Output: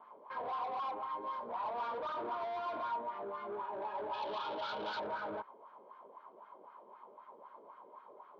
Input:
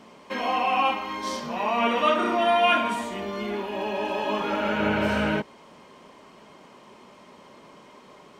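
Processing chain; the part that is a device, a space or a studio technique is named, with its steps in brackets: wah-wah guitar rig (wah 3.9 Hz 430–1500 Hz, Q 2.4; tube stage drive 37 dB, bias 0.2; speaker cabinet 110–3500 Hz, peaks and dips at 160 Hz -8 dB, 260 Hz -4 dB, 960 Hz +7 dB, 1900 Hz -9 dB, 2700 Hz -10 dB); 4.13–5 band shelf 4500 Hz +14 dB; gain -1.5 dB

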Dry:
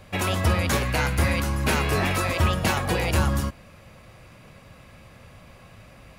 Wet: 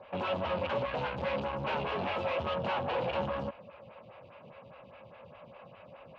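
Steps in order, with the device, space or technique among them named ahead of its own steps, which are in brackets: vibe pedal into a guitar amplifier (photocell phaser 4.9 Hz; tube stage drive 34 dB, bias 0.6; speaker cabinet 110–3400 Hz, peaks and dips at 310 Hz -7 dB, 560 Hz +8 dB, 910 Hz +7 dB, 1900 Hz -6 dB, 2800 Hz +5 dB); gain +1.5 dB

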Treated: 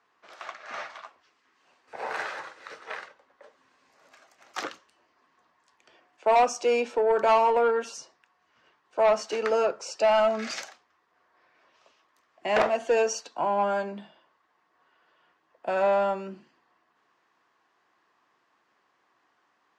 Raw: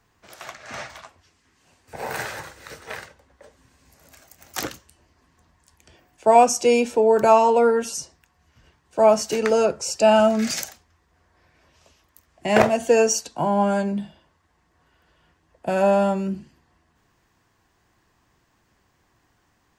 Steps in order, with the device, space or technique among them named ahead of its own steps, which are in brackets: intercom (BPF 390–4200 Hz; bell 1200 Hz +5 dB 0.5 oct; soft clip -12 dBFS, distortion -14 dB); gain -3 dB

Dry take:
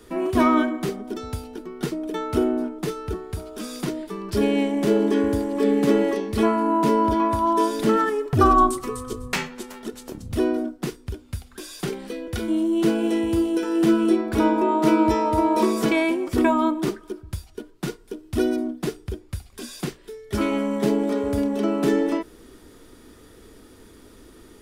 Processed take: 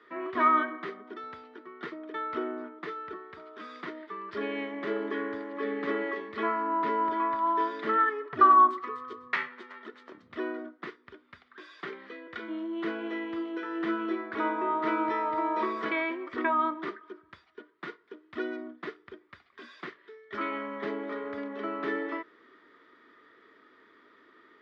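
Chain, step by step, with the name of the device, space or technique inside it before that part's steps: phone earpiece (speaker cabinet 480–3200 Hz, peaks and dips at 510 Hz -6 dB, 780 Hz -9 dB, 1200 Hz +7 dB, 1900 Hz +8 dB, 2700 Hz -7 dB); gain -5 dB

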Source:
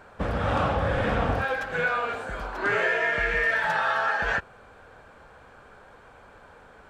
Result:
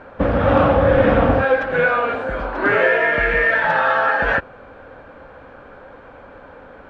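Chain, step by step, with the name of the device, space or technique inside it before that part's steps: inside a cardboard box (LPF 2900 Hz 12 dB/oct; small resonant body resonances 280/530 Hz, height 9 dB, ringing for 45 ms); gain +7.5 dB

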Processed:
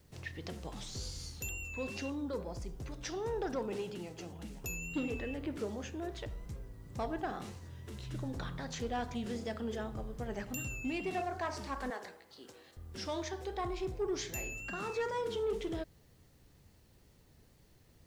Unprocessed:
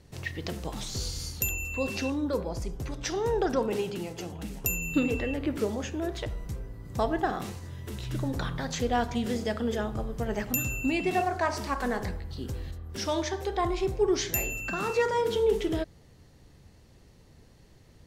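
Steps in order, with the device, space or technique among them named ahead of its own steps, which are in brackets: compact cassette (soft clip -19.5 dBFS, distortion -19 dB; LPF 10000 Hz 12 dB/oct; wow and flutter; white noise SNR 35 dB); 11.9–12.77 HPF 450 Hz 12 dB/oct; gain -8 dB

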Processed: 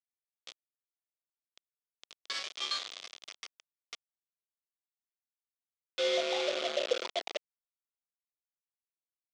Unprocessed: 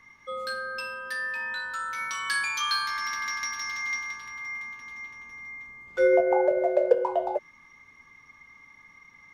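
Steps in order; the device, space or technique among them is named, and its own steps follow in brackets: hand-held game console (bit-crush 4-bit; speaker cabinet 450–6000 Hz, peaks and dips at 900 Hz -10 dB, 1600 Hz -9 dB, 3400 Hz +8 dB); gain -8 dB

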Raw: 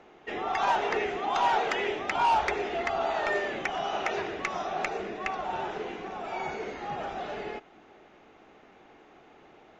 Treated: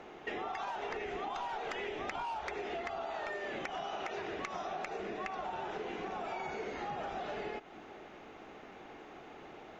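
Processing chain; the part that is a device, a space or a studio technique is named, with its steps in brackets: serial compression, leveller first (compressor, threshold -30 dBFS, peak gain reduction 9.5 dB; compressor 6:1, threshold -41 dBFS, peak gain reduction 12 dB); 0.83–2.23 low shelf 71 Hz +10.5 dB; gain +4 dB

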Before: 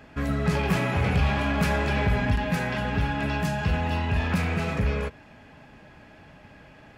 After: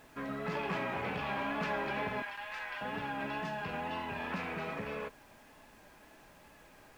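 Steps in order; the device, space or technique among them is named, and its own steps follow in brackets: 2.22–2.81 HPF 1100 Hz 12 dB/oct; horn gramophone (BPF 260–3600 Hz; bell 1000 Hz +5 dB 0.27 oct; wow and flutter; pink noise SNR 24 dB); gain -8 dB

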